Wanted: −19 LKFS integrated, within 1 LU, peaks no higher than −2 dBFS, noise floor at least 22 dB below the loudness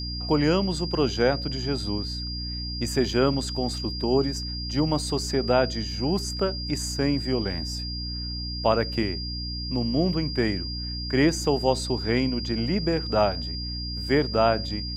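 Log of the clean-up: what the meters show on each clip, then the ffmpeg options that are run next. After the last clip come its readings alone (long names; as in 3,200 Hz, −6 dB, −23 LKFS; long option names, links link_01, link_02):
mains hum 60 Hz; hum harmonics up to 300 Hz; level of the hum −31 dBFS; interfering tone 4,800 Hz; level of the tone −33 dBFS; integrated loudness −25.5 LKFS; sample peak −7.5 dBFS; target loudness −19.0 LKFS
→ -af "bandreject=frequency=60:width_type=h:width=6,bandreject=frequency=120:width_type=h:width=6,bandreject=frequency=180:width_type=h:width=6,bandreject=frequency=240:width_type=h:width=6,bandreject=frequency=300:width_type=h:width=6"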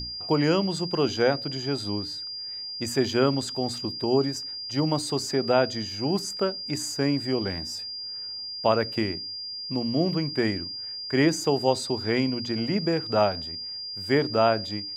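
mains hum none found; interfering tone 4,800 Hz; level of the tone −33 dBFS
→ -af "bandreject=frequency=4800:width=30"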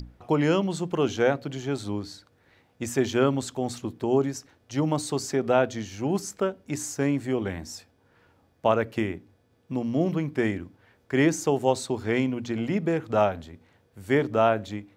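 interfering tone none found; integrated loudness −26.5 LKFS; sample peak −8.0 dBFS; target loudness −19.0 LKFS
→ -af "volume=7.5dB,alimiter=limit=-2dB:level=0:latency=1"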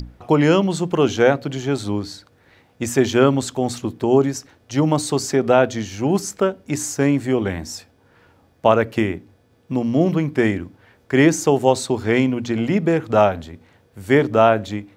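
integrated loudness −19.0 LKFS; sample peak −2.0 dBFS; background noise floor −57 dBFS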